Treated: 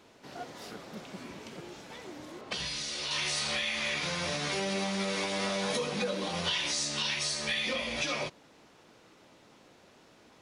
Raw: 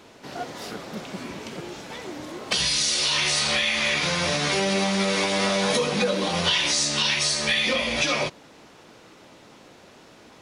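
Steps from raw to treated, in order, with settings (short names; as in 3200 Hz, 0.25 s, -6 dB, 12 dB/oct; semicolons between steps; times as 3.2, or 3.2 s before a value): 2.41–3.11 LPF 3300 Hz 6 dB/oct; gain -9 dB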